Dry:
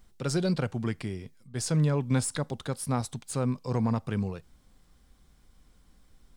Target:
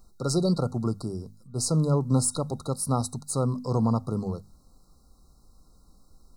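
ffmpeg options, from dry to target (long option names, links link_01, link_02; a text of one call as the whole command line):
ffmpeg -i in.wav -af "afftfilt=real='re*(1-between(b*sr/4096,1400,3800))':imag='im*(1-between(b*sr/4096,1400,3800))':win_size=4096:overlap=0.75,adynamicequalizer=threshold=0.00282:dfrequency=9700:dqfactor=2.1:tfrequency=9700:tqfactor=2.1:attack=5:release=100:ratio=0.375:range=2:mode=boostabove:tftype=bell,bandreject=frequency=50:width_type=h:width=6,bandreject=frequency=100:width_type=h:width=6,bandreject=frequency=150:width_type=h:width=6,bandreject=frequency=200:width_type=h:width=6,bandreject=frequency=250:width_type=h:width=6,volume=3.5dB" out.wav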